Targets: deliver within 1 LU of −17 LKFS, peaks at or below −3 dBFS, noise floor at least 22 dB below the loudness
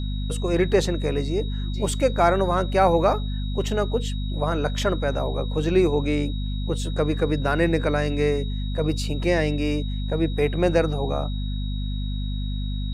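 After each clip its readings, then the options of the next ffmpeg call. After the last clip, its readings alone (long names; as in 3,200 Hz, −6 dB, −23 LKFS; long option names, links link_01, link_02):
mains hum 50 Hz; hum harmonics up to 250 Hz; level of the hum −24 dBFS; interfering tone 3,800 Hz; level of the tone −40 dBFS; integrated loudness −24.0 LKFS; sample peak −5.5 dBFS; target loudness −17.0 LKFS
→ -af "bandreject=frequency=50:width_type=h:width=4,bandreject=frequency=100:width_type=h:width=4,bandreject=frequency=150:width_type=h:width=4,bandreject=frequency=200:width_type=h:width=4,bandreject=frequency=250:width_type=h:width=4"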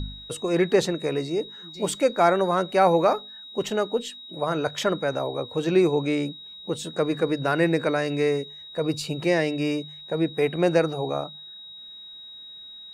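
mains hum none found; interfering tone 3,800 Hz; level of the tone −40 dBFS
→ -af "bandreject=frequency=3800:width=30"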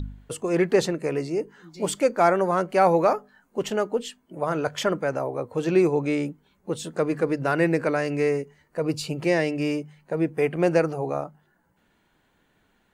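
interfering tone none found; integrated loudness −25.0 LKFS; sample peak −6.5 dBFS; target loudness −17.0 LKFS
→ -af "volume=8dB,alimiter=limit=-3dB:level=0:latency=1"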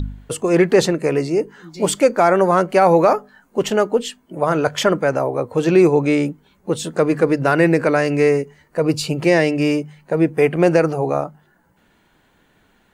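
integrated loudness −17.5 LKFS; sample peak −3.0 dBFS; background noise floor −59 dBFS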